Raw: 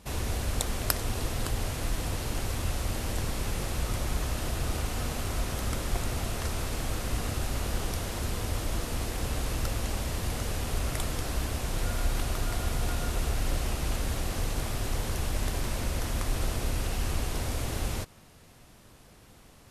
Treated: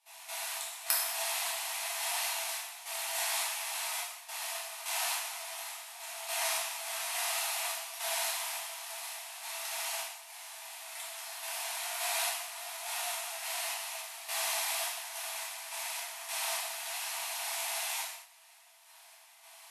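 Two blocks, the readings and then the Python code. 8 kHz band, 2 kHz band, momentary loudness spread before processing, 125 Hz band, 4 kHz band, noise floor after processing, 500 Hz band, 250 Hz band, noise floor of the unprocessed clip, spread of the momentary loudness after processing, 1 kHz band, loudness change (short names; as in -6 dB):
+3.0 dB, +1.5 dB, 2 LU, under -40 dB, +2.0 dB, -57 dBFS, -7.5 dB, under -40 dB, -54 dBFS, 10 LU, -1.0 dB, -2.0 dB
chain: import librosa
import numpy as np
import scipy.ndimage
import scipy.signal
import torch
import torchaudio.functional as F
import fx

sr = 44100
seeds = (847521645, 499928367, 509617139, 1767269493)

y = scipy.signal.sosfilt(scipy.signal.cheby1(6, 6, 650.0, 'highpass', fs=sr, output='sos'), x)
y = fx.tremolo_random(y, sr, seeds[0], hz=3.5, depth_pct=90)
y = scipy.signal.sosfilt(scipy.signal.cheby1(3, 1.0, 12000.0, 'lowpass', fs=sr, output='sos'), y)
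y = fx.high_shelf(y, sr, hz=6300.0, db=11.0)
y = fx.rev_gated(y, sr, seeds[1], gate_ms=270, shape='falling', drr_db=-6.5)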